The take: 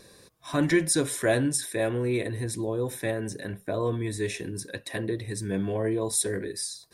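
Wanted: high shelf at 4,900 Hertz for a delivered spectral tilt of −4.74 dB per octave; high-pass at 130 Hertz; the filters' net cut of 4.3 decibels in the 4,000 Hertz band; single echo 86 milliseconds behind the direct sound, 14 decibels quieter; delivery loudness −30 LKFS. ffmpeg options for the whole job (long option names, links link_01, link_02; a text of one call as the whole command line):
ffmpeg -i in.wav -af "highpass=130,equalizer=frequency=4000:width_type=o:gain=-3.5,highshelf=frequency=4900:gain=-3.5,aecho=1:1:86:0.2,volume=-0.5dB" out.wav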